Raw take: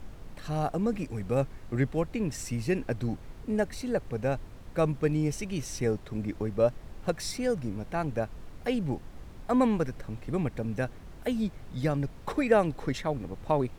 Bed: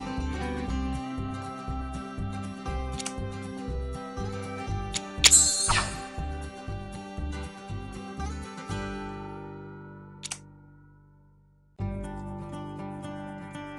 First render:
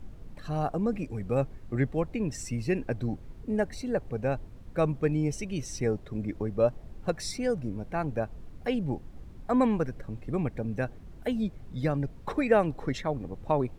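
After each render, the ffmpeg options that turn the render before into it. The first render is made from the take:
-af "afftdn=nr=8:nf=-47"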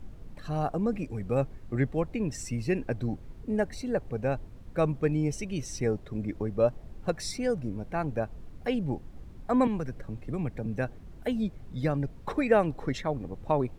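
-filter_complex "[0:a]asettb=1/sr,asplit=3[a][b][c];[a]atrim=end=9.674[d];[b]atrim=start=9.67:end=10.66,asetpts=PTS-STARTPTS,afade=t=in:d=0.004:c=qsin,afade=t=out:st=0.986:d=0.004:c=qsin,acrossover=split=170|3000[e][f][g];[f]acompressor=threshold=-31dB:ratio=6:attack=3.2:release=140:knee=2.83:detection=peak[h];[e][h][g]amix=inputs=3:normalize=0[i];[c]atrim=start=10.656[j];[d][i]acrossfade=d=0.004:c1=hsin:c2=qsin[k];[k][j]acrossfade=d=0.004:c1=qsin:c2=hsin"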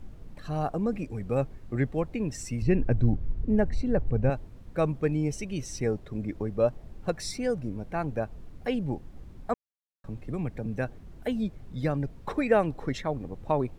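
-filter_complex "[0:a]asettb=1/sr,asplit=3[a][b][c];[a]atrim=end=2.624[d];[b]atrim=start=2.62:end=4.3,asetpts=PTS-STARTPTS,afade=t=in:d=0.004:c=qsin,afade=t=out:st=1.676:d=0.004:c=qsin,aemphasis=mode=reproduction:type=bsi[e];[c]atrim=start=4.296[f];[d][e]acrossfade=d=0.004:c1=hsin:c2=qsin[g];[g][f]acrossfade=d=0.004:c1=qsin:c2=hsin,asplit=3[h][i][j];[h]atrim=end=9.54,asetpts=PTS-STARTPTS,afade=t=out:st=9.536:d=0.004:c=hsin[k];[i]atrim=start=9.54:end=10.04,asetpts=PTS-STARTPTS,volume=0[l];[j]atrim=start=10.04,asetpts=PTS-STARTPTS,afade=t=in:d=0.004:c=hsin[m];[k][l][m]concat=n=3:v=0:a=1"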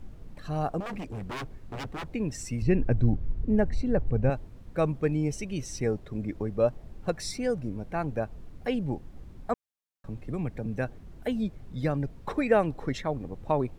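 -filter_complex "[0:a]asettb=1/sr,asplit=3[a][b][c];[a]atrim=end=0.804[d];[b]atrim=start=0.8:end=2.14,asetpts=PTS-STARTPTS,afade=t=in:d=0.004:c=qsin,afade=t=out:st=1.336:d=0.004:c=qsin,aeval=exprs='0.0299*(abs(mod(val(0)/0.0299+3,4)-2)-1)':c=same[e];[c]atrim=start=2.136[f];[d][e]acrossfade=d=0.004:c1=hsin:c2=qsin[g];[g][f]acrossfade=d=0.004:c1=qsin:c2=hsin"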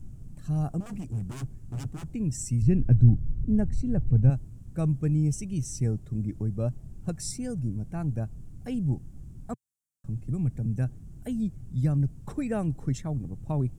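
-af "equalizer=f=125:t=o:w=1:g=9,equalizer=f=500:t=o:w=1:g=-10,equalizer=f=1k:t=o:w=1:g=-8,equalizer=f=2k:t=o:w=1:g=-10,equalizer=f=4k:t=o:w=1:g=-10,equalizer=f=8k:t=o:w=1:g=9"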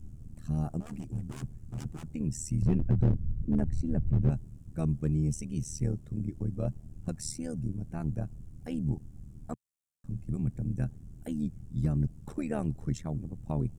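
-af "volume=17dB,asoftclip=hard,volume=-17dB,tremolo=f=77:d=0.824"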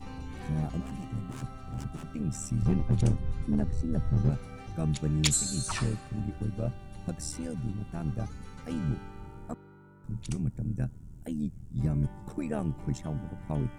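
-filter_complex "[1:a]volume=-10.5dB[a];[0:a][a]amix=inputs=2:normalize=0"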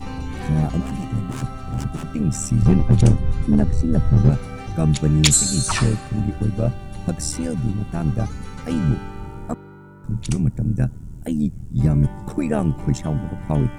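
-af "volume=11.5dB,alimiter=limit=-3dB:level=0:latency=1"

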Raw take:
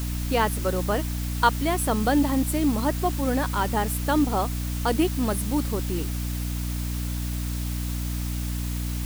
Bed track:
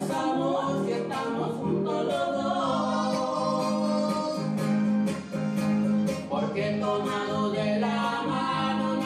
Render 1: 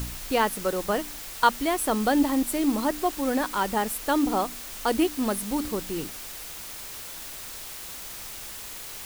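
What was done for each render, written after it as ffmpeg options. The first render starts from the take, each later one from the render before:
-af "bandreject=f=60:t=h:w=4,bandreject=f=120:t=h:w=4,bandreject=f=180:t=h:w=4,bandreject=f=240:t=h:w=4,bandreject=f=300:t=h:w=4"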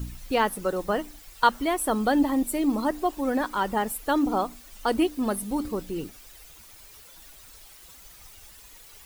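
-af "afftdn=nr=13:nf=-39"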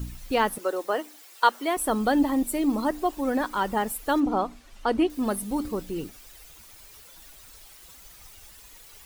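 -filter_complex "[0:a]asettb=1/sr,asplit=3[a][b][c];[a]atrim=end=0.584[d];[b]atrim=start=0.58:end=1.77,asetpts=PTS-STARTPTS,afade=t=in:d=0.004:c=qsin,afade=t=out:st=1.186:d=0.004:c=qsin,highpass=f=310:w=0.5412,highpass=f=310:w=1.3066[e];[c]atrim=start=1.766[f];[d][e]acrossfade=d=0.004:c1=hsin:c2=qsin[g];[g][f]acrossfade=d=0.004:c1=qsin:c2=hsin,asettb=1/sr,asplit=3[h][i][j];[h]atrim=end=4.204[k];[i]atrim=start=4.2:end=5.1,asetpts=PTS-STARTPTS,afade=t=in:d=0.004:c=qsin,afade=t=out:st=0.896:d=0.004:c=qsin,aemphasis=mode=reproduction:type=50fm[l];[j]atrim=start=5.096[m];[k][l]acrossfade=d=0.004:c1=hsin:c2=qsin[n];[n][m]acrossfade=d=0.004:c1=qsin:c2=hsin"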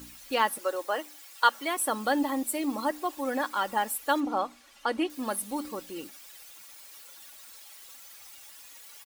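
-af "highpass=f=770:p=1,aecho=1:1:3.6:0.4"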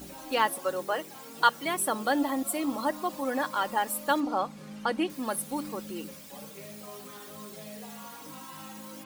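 -filter_complex "[1:a]volume=-18.5dB[a];[0:a][a]amix=inputs=2:normalize=0"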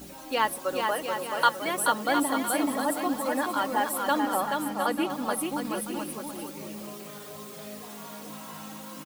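-af "aecho=1:1:430|709.5|891.2|1009|1086:0.631|0.398|0.251|0.158|0.1"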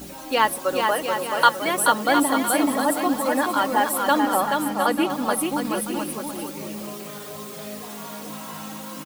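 -af "volume=6dB"

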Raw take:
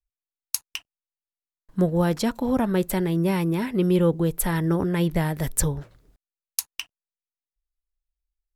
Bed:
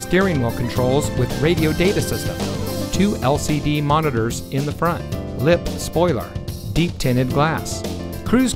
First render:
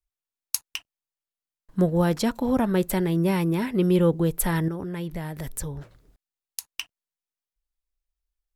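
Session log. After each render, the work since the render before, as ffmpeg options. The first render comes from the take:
-filter_complex "[0:a]asettb=1/sr,asplit=3[a][b][c];[a]atrim=end=4.684[d];[b]atrim=start=4.68:end=6.7,asetpts=PTS-STARTPTS,afade=t=in:d=0.004:c=qsin,afade=t=out:st=2.016:d=0.004:c=qsin,acompressor=threshold=-32dB:ratio=2.5:attack=3.2:release=140:knee=1:detection=peak[e];[c]atrim=start=6.696[f];[d][e]acrossfade=d=0.004:c1=hsin:c2=qsin[g];[g][f]acrossfade=d=0.004:c1=qsin:c2=hsin"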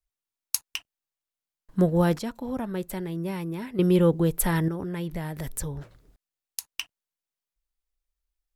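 -filter_complex "[0:a]asplit=3[a][b][c];[a]atrim=end=2.192[d];[b]atrim=start=2.188:end=3.792,asetpts=PTS-STARTPTS,volume=-8.5dB[e];[c]atrim=start=3.788[f];[d][e]acrossfade=d=0.004:c1=hsin:c2=hsin[g];[g][f]acrossfade=d=0.004:c1=hsin:c2=hsin"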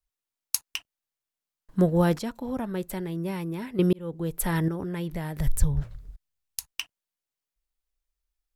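-filter_complex "[0:a]asplit=3[a][b][c];[a]afade=t=out:st=5.39:d=0.02[d];[b]asubboost=boost=8:cutoff=110,afade=t=in:st=5.39:d=0.02,afade=t=out:st=6.71:d=0.02[e];[c]afade=t=in:st=6.71:d=0.02[f];[d][e][f]amix=inputs=3:normalize=0,asplit=2[g][h];[g]atrim=end=3.93,asetpts=PTS-STARTPTS,afade=t=out:st=3.926:d=0.004:c=hsin[i];[h]atrim=start=3.93,asetpts=PTS-STARTPTS,afade=t=in:d=0.73[j];[i][j]concat=n=2:v=0:a=1"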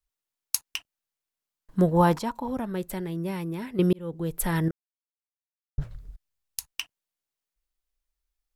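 -filter_complex "[0:a]asettb=1/sr,asplit=3[a][b][c];[a]atrim=end=1.914[d];[b]atrim=start=1.91:end=2.48,asetpts=PTS-STARTPTS,afade=t=in:d=0.004:c=qsin,afade=t=out:st=0.566:d=0.004:c=qsin,equalizer=f=960:t=o:w=0.51:g=13.5[e];[c]atrim=start=2.476[f];[d][e]acrossfade=d=0.004:c1=hsin:c2=qsin[g];[g][f]acrossfade=d=0.004:c1=qsin:c2=hsin,asplit=3[h][i][j];[h]atrim=end=4.71,asetpts=PTS-STARTPTS,afade=t=out:st=4.706:d=0.004:c=hsin[k];[i]atrim=start=4.71:end=5.78,asetpts=PTS-STARTPTS,volume=0[l];[j]atrim=start=5.78,asetpts=PTS-STARTPTS,afade=t=in:d=0.004:c=hsin[m];[k][l][m]concat=n=3:v=0:a=1"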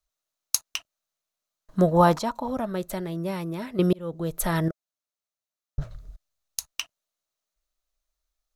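-af "equalizer=f=630:t=o:w=0.33:g=11,equalizer=f=1.25k:t=o:w=0.33:g=7,equalizer=f=4k:t=o:w=0.33:g=6,equalizer=f=6.3k:t=o:w=0.33:g=7"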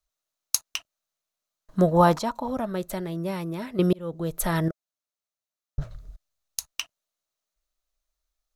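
-af anull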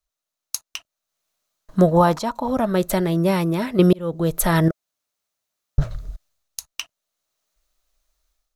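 -af "dynaudnorm=f=260:g=3:m=11dB,alimiter=limit=-5.5dB:level=0:latency=1:release=478"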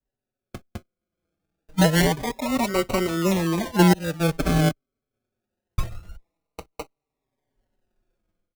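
-filter_complex "[0:a]acrusher=samples=37:mix=1:aa=0.000001:lfo=1:lforange=22.2:lforate=0.26,asplit=2[a][b];[b]adelay=4.8,afreqshift=-0.41[c];[a][c]amix=inputs=2:normalize=1"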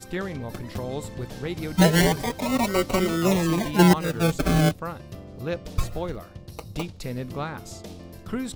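-filter_complex "[1:a]volume=-14dB[a];[0:a][a]amix=inputs=2:normalize=0"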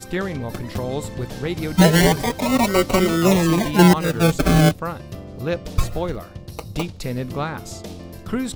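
-af "volume=5.5dB,alimiter=limit=-2dB:level=0:latency=1"

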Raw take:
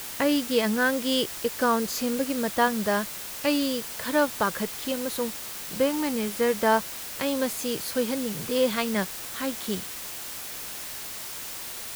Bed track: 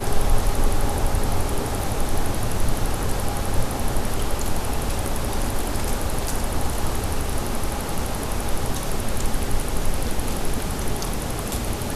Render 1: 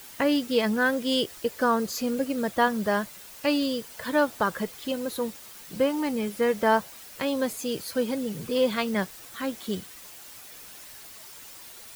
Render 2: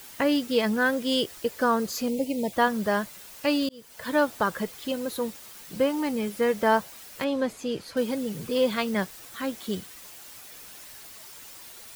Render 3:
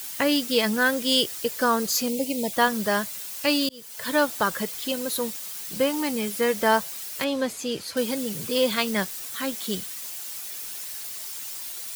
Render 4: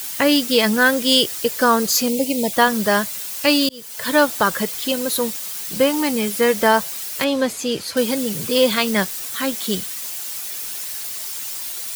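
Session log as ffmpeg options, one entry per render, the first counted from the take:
-af "afftdn=nr=10:nf=-37"
-filter_complex "[0:a]asettb=1/sr,asplit=3[a][b][c];[a]atrim=end=2.084[d];[b]atrim=start=2.08:end=2.53,asetpts=PTS-STARTPTS,afade=t=in:d=0.004:c=qsin,afade=t=out:st=0.446:d=0.004:c=qsin,asuperstop=centerf=1400:order=8:qfactor=1.3[e];[c]atrim=start=2.526[f];[d][e]acrossfade=d=0.004:c1=hsin:c2=qsin[g];[g][f]acrossfade=d=0.004:c1=qsin:c2=hsin,asettb=1/sr,asplit=3[h][i][j];[h]atrim=end=7.244[k];[i]atrim=start=7.24:end=7.97,asetpts=PTS-STARTPTS,afade=t=in:d=0.004:c=qsin,afade=t=out:st=0.726:d=0.004:c=qsin,aemphasis=mode=reproduction:type=50fm[l];[j]atrim=start=7.966[m];[k][l]acrossfade=d=0.004:c1=hsin:c2=qsin[n];[n][m]acrossfade=d=0.004:c1=qsin:c2=hsin,asplit=2[o][p];[o]atrim=end=3.69,asetpts=PTS-STARTPTS,afade=t=out:st=3.686:d=0.004:c=hsin[q];[p]atrim=start=3.69,asetpts=PTS-STARTPTS,afade=t=in:d=0.42[r];[q][r]concat=n=2:v=0:a=1"
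-af "highpass=69,highshelf=f=2.7k:g=11"
-af "volume=6.5dB,alimiter=limit=-3dB:level=0:latency=1"

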